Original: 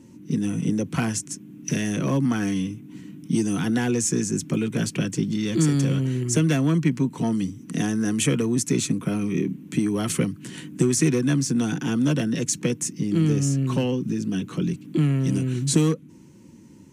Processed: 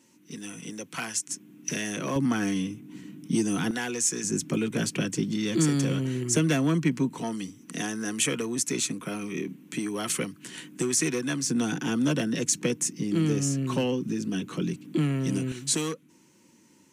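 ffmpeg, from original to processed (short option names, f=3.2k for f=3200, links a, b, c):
-af "asetnsamples=n=441:p=0,asendcmd='1.29 highpass f 580;2.16 highpass f 230;3.71 highpass f 960;4.24 highpass f 240;7.2 highpass f 650;11.44 highpass f 270;15.52 highpass f 940',highpass=f=1.5k:p=1"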